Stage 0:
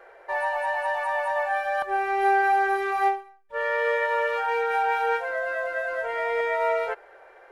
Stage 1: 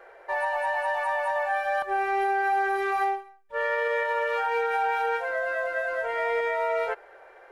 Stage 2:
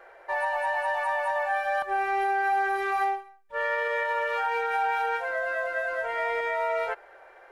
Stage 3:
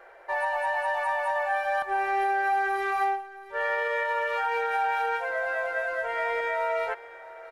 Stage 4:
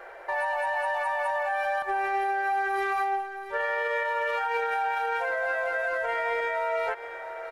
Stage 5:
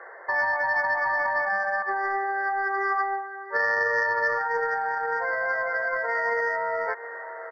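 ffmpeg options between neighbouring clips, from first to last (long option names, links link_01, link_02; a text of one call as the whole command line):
ffmpeg -i in.wav -af "alimiter=limit=-18dB:level=0:latency=1:release=68" out.wav
ffmpeg -i in.wav -af "equalizer=frequency=440:width=3.1:gain=-5" out.wav
ffmpeg -i in.wav -af "aecho=1:1:673:0.133" out.wav
ffmpeg -i in.wav -af "alimiter=level_in=3dB:limit=-24dB:level=0:latency=1:release=103,volume=-3dB,volume=6.5dB" out.wav
ffmpeg -i in.wav -af "highpass=frequency=240:width=0.5412,highpass=frequency=240:width=1.3066,equalizer=frequency=450:width_type=q:width=4:gain=5,equalizer=frequency=1100:width_type=q:width=4:gain=9,equalizer=frequency=1800:width_type=q:width=4:gain=9,equalizer=frequency=2700:width_type=q:width=4:gain=3,lowpass=frequency=3800:width=0.5412,lowpass=frequency=3800:width=1.3066,aeval=exprs='0.251*(cos(1*acos(clip(val(0)/0.251,-1,1)))-cos(1*PI/2))+0.0282*(cos(3*acos(clip(val(0)/0.251,-1,1)))-cos(3*PI/2))':channel_layout=same,afftfilt=real='re*eq(mod(floor(b*sr/1024/2200),2),0)':imag='im*eq(mod(floor(b*sr/1024/2200),2),0)':win_size=1024:overlap=0.75" out.wav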